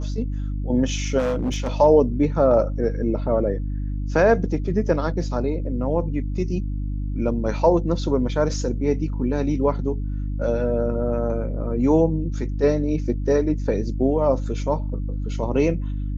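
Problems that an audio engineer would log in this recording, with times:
mains hum 50 Hz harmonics 6 −26 dBFS
0:01.18–0:01.74: clipping −19 dBFS

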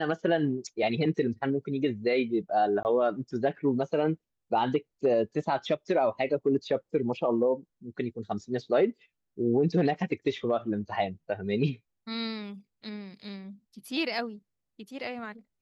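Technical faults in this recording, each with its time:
0:02.83–0:02.85: drop-out 19 ms

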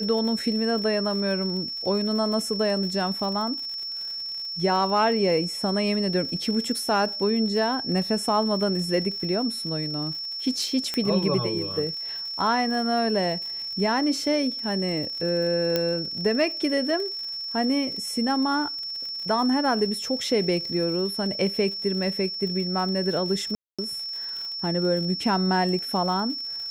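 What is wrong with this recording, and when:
surface crackle 84 per second −34 dBFS
whistle 5,400 Hz −30 dBFS
0:10.94: click −13 dBFS
0:15.76: click −9 dBFS
0:23.55–0:23.79: drop-out 236 ms

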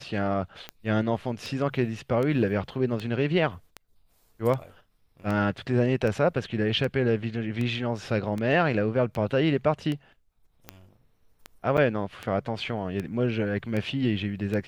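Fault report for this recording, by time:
scratch tick 78 rpm −19 dBFS
0:11.77–0:11.78: drop-out 7 ms

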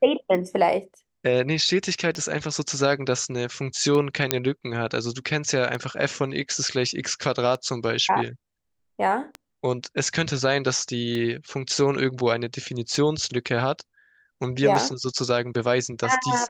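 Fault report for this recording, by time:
scratch tick 33 1/3 rpm −17 dBFS
0:04.31: click −1 dBFS

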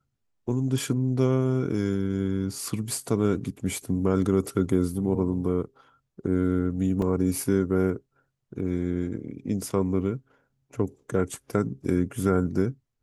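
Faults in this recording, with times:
0:07.02: drop-out 2.8 ms

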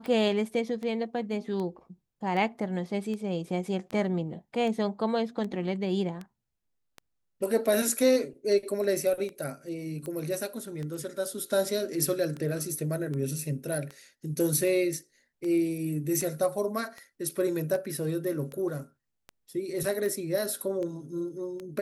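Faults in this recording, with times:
scratch tick 78 rpm

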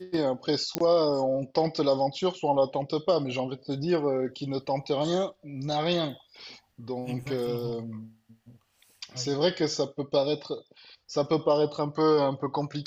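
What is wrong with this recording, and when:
0:00.75: click −8 dBFS

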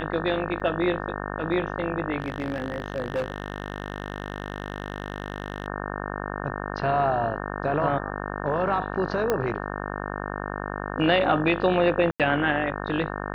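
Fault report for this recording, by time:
mains buzz 50 Hz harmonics 36 −32 dBFS
0:00.60–0:00.61: drop-out 6.5 ms
0:02.20–0:05.68: clipping −22.5 dBFS
0:09.30: click −10 dBFS
0:12.11–0:12.20: drop-out 87 ms

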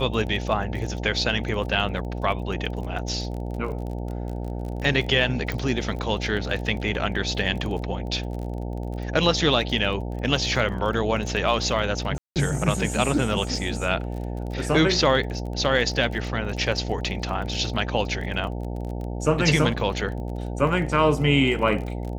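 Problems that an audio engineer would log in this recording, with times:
mains buzz 60 Hz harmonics 15 −30 dBFS
surface crackle 28 per second −32 dBFS
0:05.52: click
0:12.18–0:12.36: drop-out 178 ms

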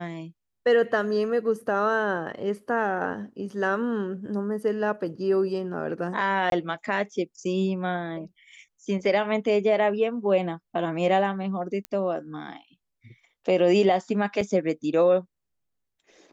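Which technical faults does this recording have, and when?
0:06.50–0:06.52: drop-out 22 ms
0:11.85: click −19 dBFS
0:14.41: drop-out 4.2 ms

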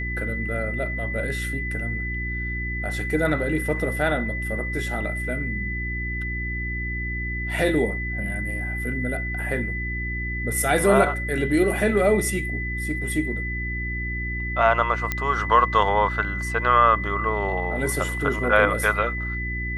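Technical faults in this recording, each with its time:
mains hum 60 Hz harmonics 6 −30 dBFS
whistle 2,000 Hz −29 dBFS
0:15.12: click −9 dBFS

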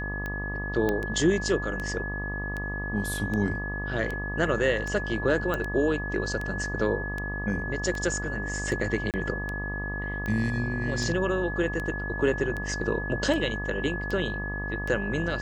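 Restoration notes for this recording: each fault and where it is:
mains buzz 50 Hz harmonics 25 −34 dBFS
scratch tick 78 rpm −20 dBFS
whistle 1,700 Hz −33 dBFS
0:00.89: click −14 dBFS
0:05.54: click −16 dBFS
0:09.11–0:09.14: drop-out 28 ms

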